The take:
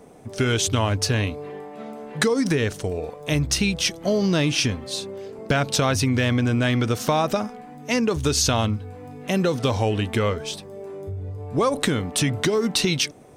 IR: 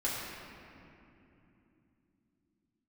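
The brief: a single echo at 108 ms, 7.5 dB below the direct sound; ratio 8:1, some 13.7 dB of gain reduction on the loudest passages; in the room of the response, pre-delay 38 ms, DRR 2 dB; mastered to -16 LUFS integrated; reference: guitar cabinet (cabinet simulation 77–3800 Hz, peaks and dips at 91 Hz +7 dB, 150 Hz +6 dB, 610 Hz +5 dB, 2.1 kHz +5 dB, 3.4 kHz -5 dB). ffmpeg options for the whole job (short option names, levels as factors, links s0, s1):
-filter_complex "[0:a]acompressor=threshold=0.0251:ratio=8,aecho=1:1:108:0.422,asplit=2[s0][s1];[1:a]atrim=start_sample=2205,adelay=38[s2];[s1][s2]afir=irnorm=-1:irlink=0,volume=0.376[s3];[s0][s3]amix=inputs=2:normalize=0,highpass=77,equalizer=f=91:t=q:w=4:g=7,equalizer=f=150:t=q:w=4:g=6,equalizer=f=610:t=q:w=4:g=5,equalizer=f=2100:t=q:w=4:g=5,equalizer=f=3400:t=q:w=4:g=-5,lowpass=f=3800:w=0.5412,lowpass=f=3800:w=1.3066,volume=5.62"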